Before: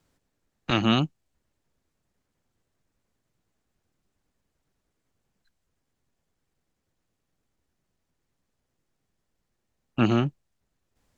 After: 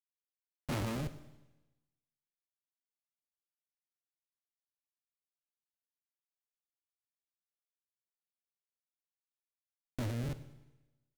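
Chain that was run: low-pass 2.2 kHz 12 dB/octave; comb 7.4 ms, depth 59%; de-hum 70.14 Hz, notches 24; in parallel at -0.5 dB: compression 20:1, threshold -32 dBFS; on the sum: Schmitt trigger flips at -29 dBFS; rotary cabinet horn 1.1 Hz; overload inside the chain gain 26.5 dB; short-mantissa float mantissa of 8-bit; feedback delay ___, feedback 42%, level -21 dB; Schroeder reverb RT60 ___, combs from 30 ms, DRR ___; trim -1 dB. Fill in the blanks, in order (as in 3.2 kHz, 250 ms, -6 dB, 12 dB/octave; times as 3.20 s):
102 ms, 1.1 s, 13 dB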